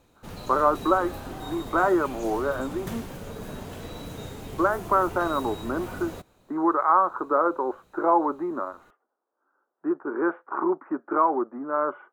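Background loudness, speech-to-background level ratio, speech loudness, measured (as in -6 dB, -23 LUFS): -38.5 LUFS, 13.0 dB, -25.5 LUFS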